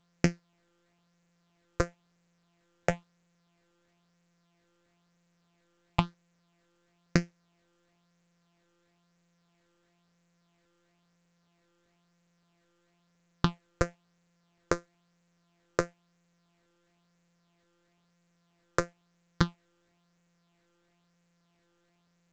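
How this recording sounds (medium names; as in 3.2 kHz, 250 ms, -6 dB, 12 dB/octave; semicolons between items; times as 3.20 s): a buzz of ramps at a fixed pitch in blocks of 256 samples; phasing stages 6, 1 Hz, lowest notch 210–1000 Hz; A-law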